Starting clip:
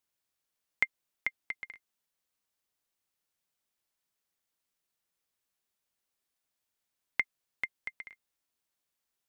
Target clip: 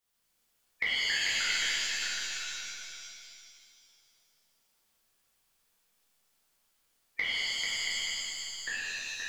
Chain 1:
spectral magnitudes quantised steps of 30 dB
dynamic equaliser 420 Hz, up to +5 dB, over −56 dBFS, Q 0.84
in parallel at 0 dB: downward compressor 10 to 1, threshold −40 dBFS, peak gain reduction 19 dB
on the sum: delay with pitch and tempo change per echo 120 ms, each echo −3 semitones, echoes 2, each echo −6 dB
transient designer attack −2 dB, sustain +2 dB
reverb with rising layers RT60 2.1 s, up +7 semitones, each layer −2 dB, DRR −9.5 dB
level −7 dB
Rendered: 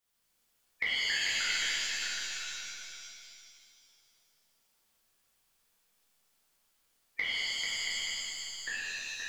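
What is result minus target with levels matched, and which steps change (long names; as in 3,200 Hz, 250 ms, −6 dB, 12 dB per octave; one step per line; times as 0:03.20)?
downward compressor: peak gain reduction +6.5 dB
change: downward compressor 10 to 1, threshold −33 dBFS, peak gain reduction 12.5 dB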